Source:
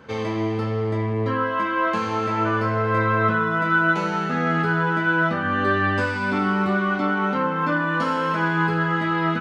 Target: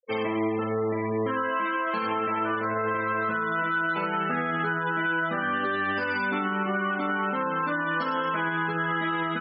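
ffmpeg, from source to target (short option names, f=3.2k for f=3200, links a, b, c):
-af "highpass=200,afftfilt=real='re*gte(hypot(re,im),0.0282)':imag='im*gte(hypot(re,im),0.0282)':win_size=1024:overlap=0.75,highshelf=f=3k:g=10.5,alimiter=limit=-19dB:level=0:latency=1:release=120"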